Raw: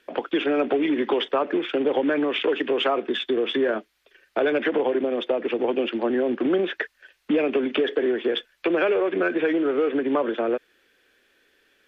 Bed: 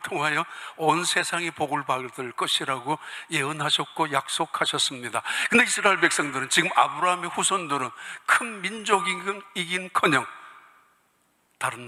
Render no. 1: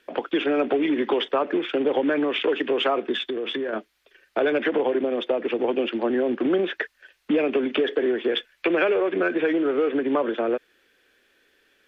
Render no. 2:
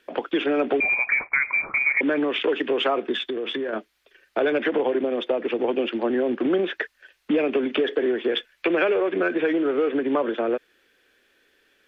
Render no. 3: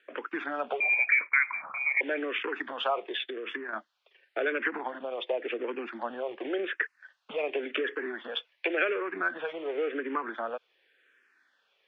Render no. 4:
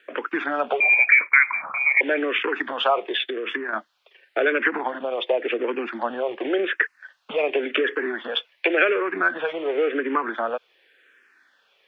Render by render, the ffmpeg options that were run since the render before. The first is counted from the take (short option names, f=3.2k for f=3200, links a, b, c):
-filter_complex "[0:a]asettb=1/sr,asplit=3[a][b][c];[a]atrim=end=3.294[d];[b]atrim=start=3.29:end=3.73,asetpts=PTS-STARTPTS,afade=t=in:d=0.004:c=qsin,afade=t=out:st=0.436:d=0.004:c=qsin,acompressor=threshold=-24dB:ratio=6:attack=3.2:release=140:knee=1:detection=peak[e];[c]atrim=start=3.726[f];[d][e]acrossfade=d=0.004:c1=hsin:c2=qsin[g];[g][f]acrossfade=d=0.004:c1=qsin:c2=hsin,asettb=1/sr,asplit=3[h][i][j];[h]atrim=end=8.314[k];[i]atrim=start=8.31:end=8.84,asetpts=PTS-STARTPTS,afade=t=in:d=0.004:c=qsin,afade=t=out:st=0.526:d=0.004:c=qsin,equalizer=f=2.2k:w=1.5:g=4.5[l];[j]atrim=start=8.836[m];[k][l]acrossfade=d=0.004:c1=hsin:c2=qsin[n];[n][m]acrossfade=d=0.004:c1=qsin:c2=hsin"
-filter_complex "[0:a]asettb=1/sr,asplit=3[a][b][c];[a]atrim=end=0.804[d];[b]atrim=start=0.8:end=2.01,asetpts=PTS-STARTPTS,afade=t=in:d=0.004:c=qsin,afade=t=out:st=1.206:d=0.004:c=qsin,lowpass=f=2.3k:t=q:w=0.5098,lowpass=f=2.3k:t=q:w=0.6013,lowpass=f=2.3k:t=q:w=0.9,lowpass=f=2.3k:t=q:w=2.563,afreqshift=-2700[e];[c]atrim=start=2.006[f];[d][e]acrossfade=d=0.004:c1=hsin:c2=qsin[g];[g][f]acrossfade=d=0.004:c1=qsin:c2=hsin"
-filter_complex "[0:a]bandpass=f=1.5k:t=q:w=0.72:csg=0,asplit=2[a][b];[b]afreqshift=-0.91[c];[a][c]amix=inputs=2:normalize=1"
-af "volume=8.5dB"